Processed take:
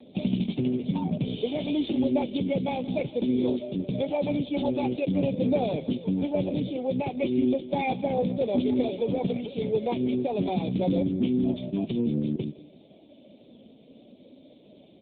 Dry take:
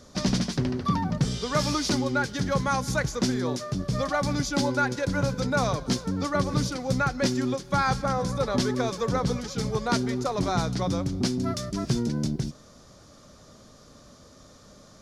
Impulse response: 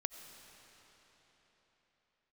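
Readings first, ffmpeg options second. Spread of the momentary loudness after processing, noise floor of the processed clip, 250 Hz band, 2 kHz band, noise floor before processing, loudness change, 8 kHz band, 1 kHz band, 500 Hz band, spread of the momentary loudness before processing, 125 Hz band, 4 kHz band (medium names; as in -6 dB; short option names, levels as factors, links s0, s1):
4 LU, -54 dBFS, +2.0 dB, -11.5 dB, -52 dBFS, -0.5 dB, under -40 dB, -6.5 dB, +1.5 dB, 4 LU, -4.5 dB, -8.0 dB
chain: -filter_complex "[0:a]highpass=230,afftfilt=real='re*(1-between(b*sr/4096,1000,2100))':imag='im*(1-between(b*sr/4096,1000,2100))':win_size=4096:overlap=0.75,equalizer=f=990:w=0.98:g=-9.5,asplit=2[s0][s1];[s1]aecho=0:1:172|344|516:0.1|0.04|0.016[s2];[s0][s2]amix=inputs=2:normalize=0,alimiter=limit=0.0794:level=0:latency=1:release=83,aphaser=in_gain=1:out_gain=1:delay=4.4:decay=0.21:speed=0.18:type=triangular,volume=2.37" -ar 8000 -c:a libopencore_amrnb -b:a 5900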